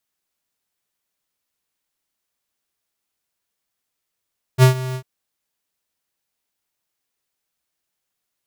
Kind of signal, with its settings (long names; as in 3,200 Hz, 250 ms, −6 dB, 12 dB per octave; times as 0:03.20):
note with an ADSR envelope square 129 Hz, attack 49 ms, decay 108 ms, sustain −17.5 dB, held 0.37 s, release 77 ms −8 dBFS